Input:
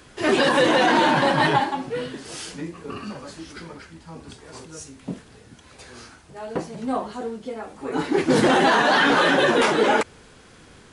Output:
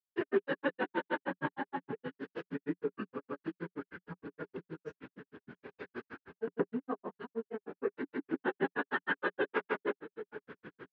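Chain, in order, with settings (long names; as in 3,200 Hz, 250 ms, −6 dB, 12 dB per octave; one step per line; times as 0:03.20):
downward compressor 2.5 to 1, threshold −38 dBFS, peak gain reduction 16 dB
on a send: single-tap delay 322 ms −14.5 dB
on the sum: granular cloud 85 ms, grains 6.4 per second, pitch spread up and down by 0 semitones
loudspeaker in its box 160–2,600 Hz, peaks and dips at 180 Hz +4 dB, 280 Hz +4 dB, 410 Hz +9 dB, 700 Hz −6 dB, 1,600 Hz +6 dB, 2,300 Hz −3 dB
level +2 dB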